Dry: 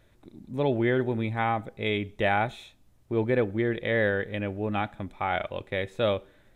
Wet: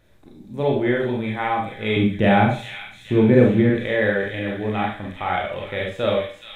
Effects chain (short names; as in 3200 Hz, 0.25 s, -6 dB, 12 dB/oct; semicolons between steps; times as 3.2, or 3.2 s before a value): 1.96–3.7 bell 160 Hz +13 dB 2 oct; thin delay 0.422 s, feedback 64%, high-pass 2800 Hz, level -4.5 dB; Schroeder reverb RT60 0.39 s, combs from 29 ms, DRR -1.5 dB; gain +1 dB